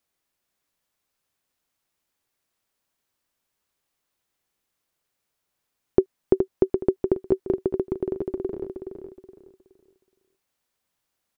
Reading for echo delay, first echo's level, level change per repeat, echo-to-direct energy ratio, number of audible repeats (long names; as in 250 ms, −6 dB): 420 ms, −6.0 dB, −11.0 dB, −5.5 dB, 3